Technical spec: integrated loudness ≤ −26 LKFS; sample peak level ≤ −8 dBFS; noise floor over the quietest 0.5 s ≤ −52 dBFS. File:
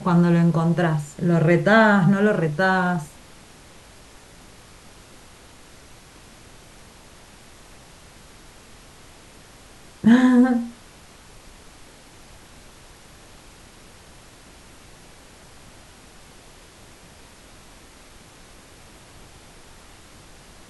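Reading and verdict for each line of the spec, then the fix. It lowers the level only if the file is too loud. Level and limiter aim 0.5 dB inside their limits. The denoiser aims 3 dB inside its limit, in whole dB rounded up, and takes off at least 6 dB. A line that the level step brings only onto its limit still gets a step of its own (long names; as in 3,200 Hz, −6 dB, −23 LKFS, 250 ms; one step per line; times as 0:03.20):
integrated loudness −18.5 LKFS: out of spec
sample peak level −4.5 dBFS: out of spec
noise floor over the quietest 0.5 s −47 dBFS: out of spec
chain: level −8 dB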